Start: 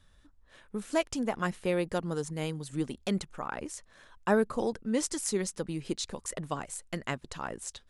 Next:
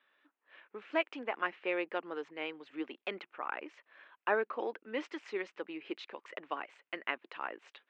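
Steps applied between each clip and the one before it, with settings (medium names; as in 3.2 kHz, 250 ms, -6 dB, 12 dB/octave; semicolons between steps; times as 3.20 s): elliptic band-pass 310–2600 Hz, stop band 60 dB; tilt shelf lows -6.5 dB, about 1.3 kHz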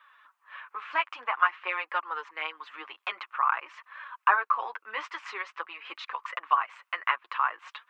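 in parallel at +1 dB: compression, threshold -44 dBFS, peak gain reduction 18 dB; on the sum: resonant high-pass 1.1 kHz, resonance Q 4.9; flange 0.5 Hz, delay 3.1 ms, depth 7 ms, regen -7%; trim +5 dB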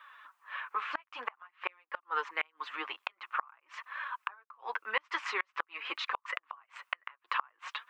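inverted gate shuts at -21 dBFS, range -35 dB; trim +4 dB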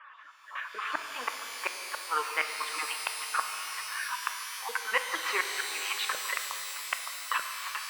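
random holes in the spectrogram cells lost 20%; level-controlled noise filter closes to 2.9 kHz; pitch-shifted reverb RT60 3.6 s, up +12 st, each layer -2 dB, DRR 5 dB; trim +3.5 dB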